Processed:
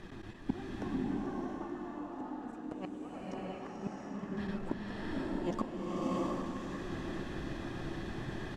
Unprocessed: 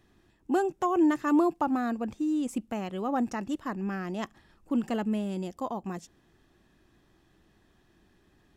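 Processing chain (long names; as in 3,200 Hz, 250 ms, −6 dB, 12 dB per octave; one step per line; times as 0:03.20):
mu-law and A-law mismatch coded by mu
low-pass filter 9,200 Hz 12 dB per octave
high-shelf EQ 4,800 Hz −10.5 dB
in parallel at −1 dB: output level in coarse steps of 19 dB
on the sum: flanger 1.9 Hz, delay 4.5 ms, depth 5.6 ms, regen +6%
gate with flip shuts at −27 dBFS, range −30 dB
square-wave tremolo 8.7 Hz, duty 90%
on a send: repeating echo 438 ms, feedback 60%, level −11 dB
on the sum: slow-attack reverb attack 690 ms, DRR −5.5 dB
level +7.5 dB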